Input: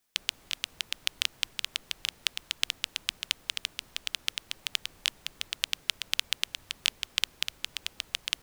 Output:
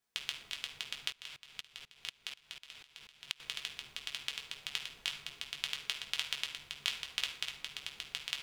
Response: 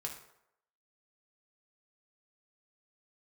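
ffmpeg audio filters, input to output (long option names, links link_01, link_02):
-filter_complex "[0:a]highshelf=frequency=6900:gain=-7[link_01];[1:a]atrim=start_sample=2205[link_02];[link_01][link_02]afir=irnorm=-1:irlink=0,asettb=1/sr,asplit=3[link_03][link_04][link_05];[link_03]atrim=end=1.124[link_06];[link_04]atrim=start=1.12:end=3.4,asetpts=PTS-STARTPTS,afade=type=in:duration=0.004:curve=qsin,afade=type=out:start_time=2.276:duration=0.004:curve=qsin,aeval=exprs='val(0)*pow(10,-25*if(lt(mod(-4.1*n/s,1),2*abs(-4.1)/1000),1-mod(-4.1*n/s,1)/(2*abs(-4.1)/1000),(mod(-4.1*n/s,1)-2*abs(-4.1)/1000)/(1-2*abs(-4.1)/1000))/20)':channel_layout=same[link_07];[link_05]atrim=start=3.396[link_08];[link_06][link_07]acrossfade=duration=0.004:curve1=hsin:curve2=qsin[link_09];[link_09][link_08]acrossfade=duration=0.004:curve1=qsin:curve2=hsin,volume=-3.5dB"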